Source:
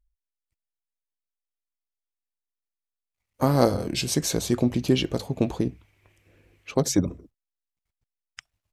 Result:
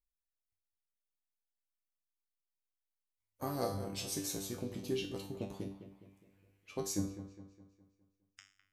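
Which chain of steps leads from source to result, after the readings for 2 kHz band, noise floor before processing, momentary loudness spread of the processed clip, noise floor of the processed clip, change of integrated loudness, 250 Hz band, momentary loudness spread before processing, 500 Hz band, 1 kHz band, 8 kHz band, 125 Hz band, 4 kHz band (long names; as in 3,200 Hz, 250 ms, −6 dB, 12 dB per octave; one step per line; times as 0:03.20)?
−14.5 dB, below −85 dBFS, 15 LU, below −85 dBFS, −15.0 dB, −16.0 dB, 8 LU, −14.5 dB, −14.0 dB, −11.0 dB, −17.0 dB, −13.5 dB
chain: high-shelf EQ 8,900 Hz +11.5 dB
tuned comb filter 98 Hz, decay 0.43 s, harmonics all, mix 90%
on a send: delay with a low-pass on its return 206 ms, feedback 46%, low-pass 2,700 Hz, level −11 dB
on the sum: level −5.5 dB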